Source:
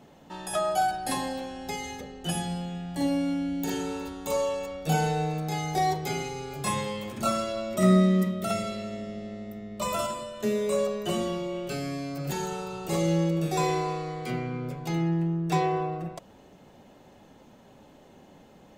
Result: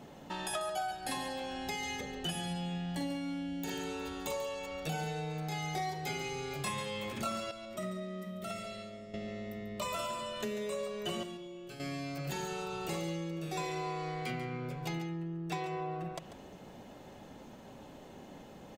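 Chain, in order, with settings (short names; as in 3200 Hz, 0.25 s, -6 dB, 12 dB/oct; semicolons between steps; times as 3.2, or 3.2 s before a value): 7.51–9.14 resonator 620 Hz, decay 0.53 s, mix 80%; compressor 4:1, threshold -40 dBFS, peak gain reduction 16 dB; 11.23–11.8 resonator 120 Hz, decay 0.33 s, harmonics all, mix 80%; on a send: echo 0.142 s -11 dB; on the sum: dynamic EQ 2600 Hz, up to +6 dB, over -59 dBFS, Q 0.72; gain +2 dB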